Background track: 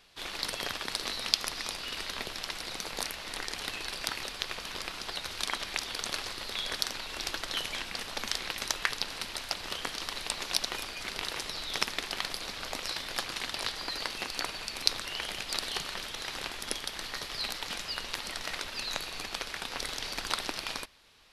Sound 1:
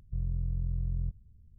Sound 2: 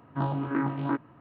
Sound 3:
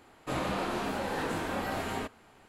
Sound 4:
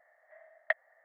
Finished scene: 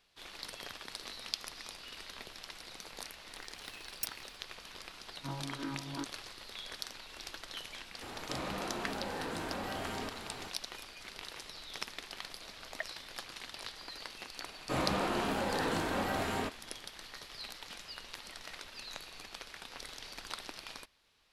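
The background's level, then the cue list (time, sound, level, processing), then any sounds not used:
background track −10.5 dB
0:03.33: mix in 4 −8.5 dB + samples in bit-reversed order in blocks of 128 samples
0:05.08: mix in 2 −12.5 dB
0:08.02: mix in 3 −8 dB + envelope flattener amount 70%
0:12.10: mix in 4 −10.5 dB
0:14.42: mix in 3 −0.5 dB
not used: 1

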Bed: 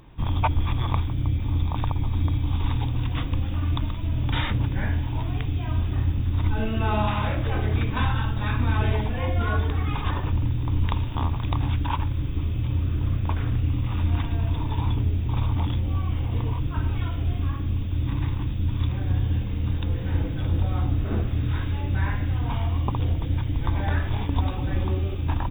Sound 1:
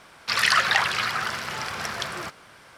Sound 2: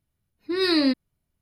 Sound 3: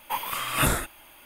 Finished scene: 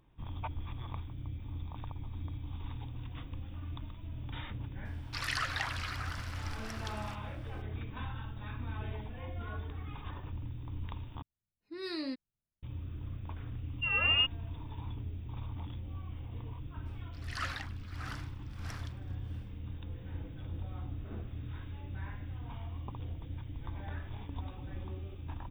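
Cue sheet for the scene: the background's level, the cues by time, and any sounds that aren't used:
bed −17 dB
0:04.85: mix in 1 −15 dB + inverse Chebyshev high-pass filter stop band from 210 Hz
0:11.22: overwrite with 2 −17 dB + high-shelf EQ 8,500 Hz −5.5 dB
0:13.33: mix in 2 −7 dB + voice inversion scrambler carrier 3,100 Hz
0:16.85: mix in 1 −16 dB, fades 0.02 s + tremolo with a sine in dB 1.6 Hz, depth 21 dB
not used: 3

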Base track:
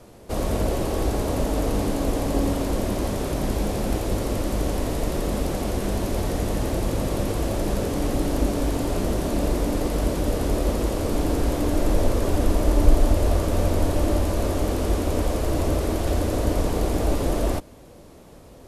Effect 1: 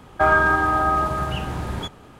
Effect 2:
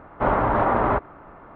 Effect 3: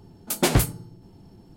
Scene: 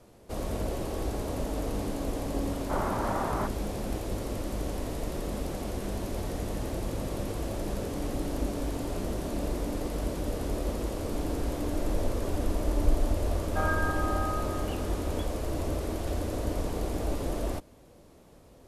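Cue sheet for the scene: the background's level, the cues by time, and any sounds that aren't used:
base track −8.5 dB
0:02.49: mix in 2 −11 dB
0:13.36: mix in 1 −14 dB
not used: 3

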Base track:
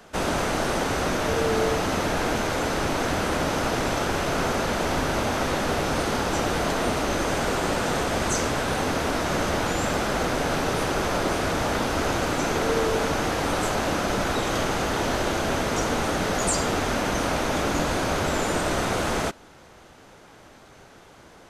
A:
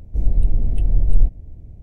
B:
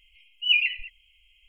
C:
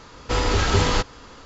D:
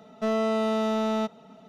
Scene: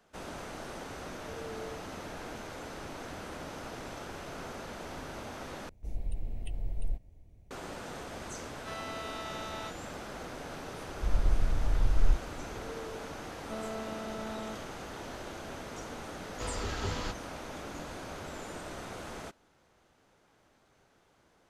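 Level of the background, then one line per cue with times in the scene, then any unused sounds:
base track −17.5 dB
0:05.69: overwrite with A −10 dB + tilt shelving filter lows −9 dB, about 670 Hz
0:08.44: mix in D −5.5 dB + high-pass filter 1,400 Hz
0:10.88: mix in A −10.5 dB + Butterworth low-pass 530 Hz
0:13.28: mix in D −15 dB
0:16.10: mix in C −16 dB + pitch vibrato 6.6 Hz 11 cents
not used: B

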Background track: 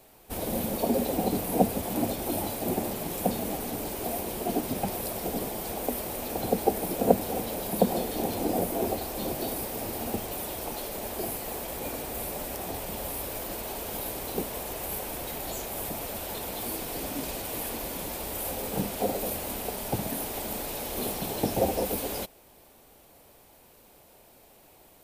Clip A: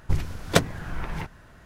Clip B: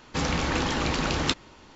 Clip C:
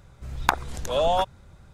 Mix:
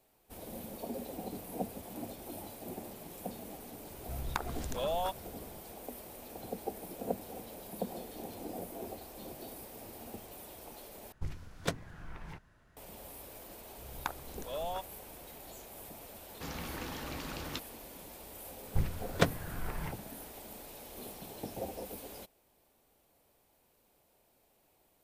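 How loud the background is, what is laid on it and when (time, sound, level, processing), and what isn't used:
background track −14.5 dB
0:03.87: mix in C −4 dB + downward compressor 2 to 1, threshold −32 dBFS
0:11.12: overwrite with A −14.5 dB
0:13.57: mix in C −16 dB
0:16.26: mix in B −15.5 dB
0:18.66: mix in A −7 dB + high-shelf EQ 5,500 Hz −9.5 dB

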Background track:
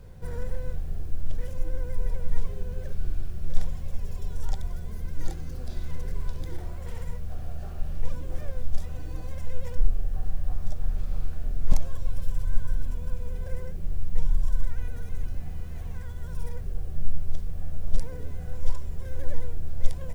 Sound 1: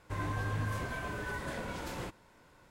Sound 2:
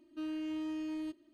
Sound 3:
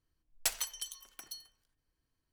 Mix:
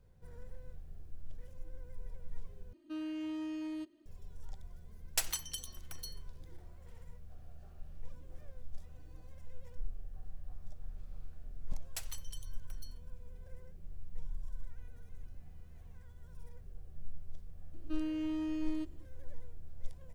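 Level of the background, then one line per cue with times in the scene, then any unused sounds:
background track −18 dB
0:02.73: overwrite with 2 −1.5 dB
0:04.72: mix in 3 −1 dB
0:11.51: mix in 3 −11 dB
0:17.73: mix in 2 −1.5 dB + low-shelf EQ 470 Hz +4.5 dB
not used: 1

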